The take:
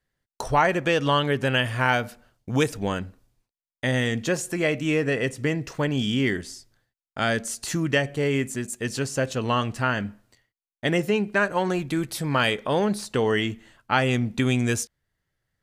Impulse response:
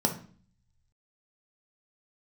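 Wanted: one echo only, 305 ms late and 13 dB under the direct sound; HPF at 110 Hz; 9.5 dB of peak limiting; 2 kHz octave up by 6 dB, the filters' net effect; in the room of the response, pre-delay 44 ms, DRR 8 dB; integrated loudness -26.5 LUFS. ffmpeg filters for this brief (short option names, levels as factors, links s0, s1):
-filter_complex "[0:a]highpass=110,equalizer=f=2000:t=o:g=7.5,alimiter=limit=0.266:level=0:latency=1,aecho=1:1:305:0.224,asplit=2[s0][s1];[1:a]atrim=start_sample=2205,adelay=44[s2];[s1][s2]afir=irnorm=-1:irlink=0,volume=0.141[s3];[s0][s3]amix=inputs=2:normalize=0,volume=0.668"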